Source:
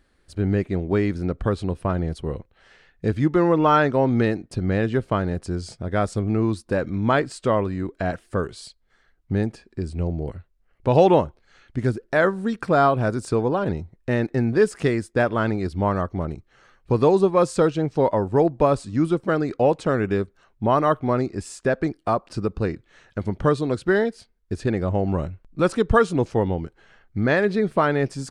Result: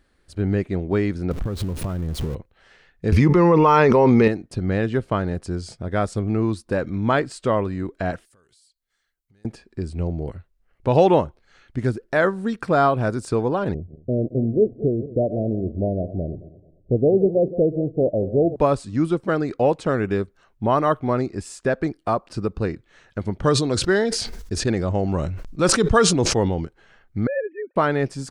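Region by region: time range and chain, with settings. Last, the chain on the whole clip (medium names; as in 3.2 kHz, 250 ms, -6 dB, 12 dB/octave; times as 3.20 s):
1.31–2.35 s: jump at every zero crossing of -28.5 dBFS + bass shelf 340 Hz +9 dB + compression 10:1, threshold -21 dBFS
3.12–4.28 s: rippled EQ curve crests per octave 0.83, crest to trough 9 dB + level flattener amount 100%
8.25–9.45 s: pre-emphasis filter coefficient 0.9 + compression 8:1, threshold -56 dBFS
13.74–18.56 s: backward echo that repeats 110 ms, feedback 50%, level -13.5 dB + steep low-pass 700 Hz 96 dB/octave
23.43–26.65 s: peaking EQ 5.9 kHz +8 dB 1.2 oct + decay stretcher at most 41 dB/s
27.27–27.76 s: formants replaced by sine waves + cascade formant filter e
whole clip: none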